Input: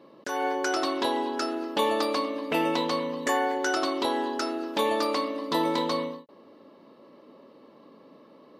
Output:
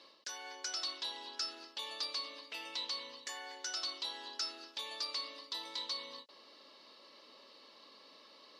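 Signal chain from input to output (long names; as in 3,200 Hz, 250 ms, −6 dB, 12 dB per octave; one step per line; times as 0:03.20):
reversed playback
downward compressor 6 to 1, threshold −41 dBFS, peak gain reduction 19 dB
reversed playback
resonant band-pass 4,800 Hz, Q 2.1
level +15 dB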